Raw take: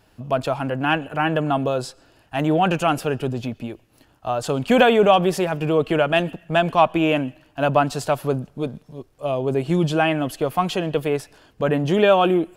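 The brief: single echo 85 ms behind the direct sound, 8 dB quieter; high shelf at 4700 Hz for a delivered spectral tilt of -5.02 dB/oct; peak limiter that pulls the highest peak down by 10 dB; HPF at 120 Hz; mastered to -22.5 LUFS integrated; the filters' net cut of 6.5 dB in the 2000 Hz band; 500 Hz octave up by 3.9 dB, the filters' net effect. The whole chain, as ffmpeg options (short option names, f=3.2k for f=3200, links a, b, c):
-af "highpass=120,equalizer=f=500:t=o:g=5.5,equalizer=f=2k:t=o:g=-8.5,highshelf=f=4.7k:g=-7,alimiter=limit=-10.5dB:level=0:latency=1,aecho=1:1:85:0.398,volume=-1.5dB"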